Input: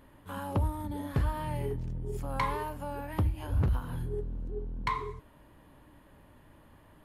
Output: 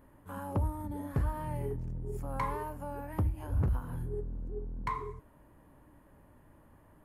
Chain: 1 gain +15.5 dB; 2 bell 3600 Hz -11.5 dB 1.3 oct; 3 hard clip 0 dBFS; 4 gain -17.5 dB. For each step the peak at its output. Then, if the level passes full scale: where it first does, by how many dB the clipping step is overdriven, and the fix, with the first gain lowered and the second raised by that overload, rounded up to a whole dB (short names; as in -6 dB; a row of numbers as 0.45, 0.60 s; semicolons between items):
-5.0, -5.0, -5.0, -22.5 dBFS; no overload